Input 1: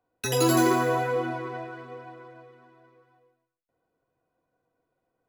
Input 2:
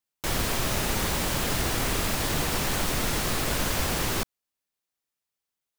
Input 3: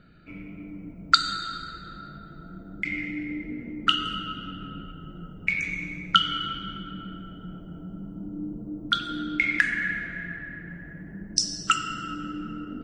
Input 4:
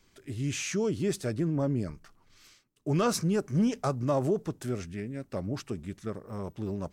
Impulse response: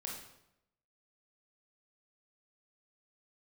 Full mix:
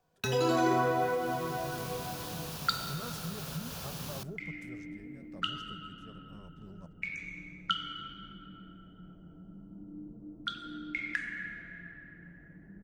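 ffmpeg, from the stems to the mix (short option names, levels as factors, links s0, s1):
-filter_complex "[0:a]lowpass=4400,volume=1.19,asplit=2[s0][s1];[s1]volume=0.398[s2];[1:a]highpass=91,equalizer=f=8100:w=2.8:g=-6.5,acrossover=split=130|2800[s3][s4][s5];[s3]acompressor=threshold=0.00355:ratio=4[s6];[s4]acompressor=threshold=0.00631:ratio=4[s7];[s5]acompressor=threshold=0.00891:ratio=4[s8];[s6][s7][s8]amix=inputs=3:normalize=0,volume=0.708,asplit=2[s9][s10];[s10]volume=0.141[s11];[2:a]adelay=1550,volume=0.211,asplit=2[s12][s13];[s13]volume=0.299[s14];[3:a]equalizer=f=1800:t=o:w=0.28:g=9.5,volume=0.133[s15];[s0][s9][s15]amix=inputs=3:normalize=0,equalizer=f=160:t=o:w=0.33:g=12,equalizer=f=315:t=o:w=0.33:g=-11,equalizer=f=2000:t=o:w=0.33:g=-11,acompressor=threshold=0.02:ratio=6,volume=1[s16];[4:a]atrim=start_sample=2205[s17];[s2][s11][s14]amix=inputs=3:normalize=0[s18];[s18][s17]afir=irnorm=-1:irlink=0[s19];[s12][s16][s19]amix=inputs=3:normalize=0"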